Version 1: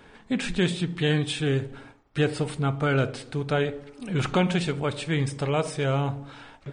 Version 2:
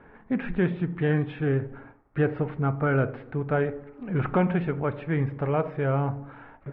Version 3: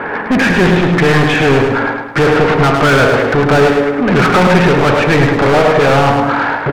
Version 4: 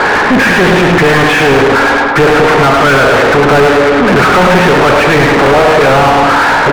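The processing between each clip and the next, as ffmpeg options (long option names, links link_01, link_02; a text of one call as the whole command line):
ffmpeg -i in.wav -af "lowpass=frequency=1900:width=0.5412,lowpass=frequency=1900:width=1.3066" out.wav
ffmpeg -i in.wav -filter_complex "[0:a]asplit=2[link_01][link_02];[link_02]highpass=frequency=720:poles=1,volume=35dB,asoftclip=type=tanh:threshold=-12dB[link_03];[link_01][link_03]amix=inputs=2:normalize=0,lowpass=frequency=3100:poles=1,volume=-6dB,aecho=1:1:105|210|315|420|525:0.562|0.231|0.0945|0.0388|0.0159,volume=8dB" out.wav
ffmpeg -i in.wav -filter_complex "[0:a]asplit=2[link_01][link_02];[link_02]highpass=frequency=720:poles=1,volume=31dB,asoftclip=type=tanh:threshold=-1dB[link_03];[link_01][link_03]amix=inputs=2:normalize=0,lowpass=frequency=2000:poles=1,volume=-6dB" out.wav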